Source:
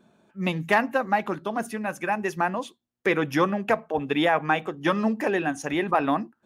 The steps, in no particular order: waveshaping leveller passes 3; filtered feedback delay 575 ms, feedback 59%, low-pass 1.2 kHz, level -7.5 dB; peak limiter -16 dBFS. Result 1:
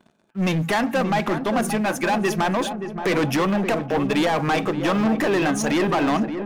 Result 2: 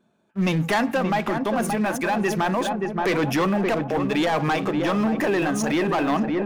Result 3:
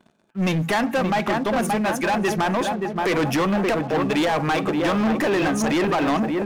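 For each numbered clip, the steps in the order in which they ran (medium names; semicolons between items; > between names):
peak limiter > waveshaping leveller > filtered feedback delay; waveshaping leveller > filtered feedback delay > peak limiter; filtered feedback delay > peak limiter > waveshaping leveller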